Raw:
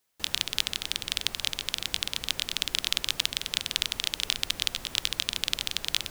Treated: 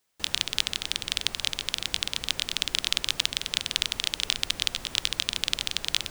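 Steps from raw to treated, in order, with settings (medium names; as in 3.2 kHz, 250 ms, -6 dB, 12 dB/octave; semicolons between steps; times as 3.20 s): peaking EQ 13 kHz -11 dB 0.22 oct; trim +1.5 dB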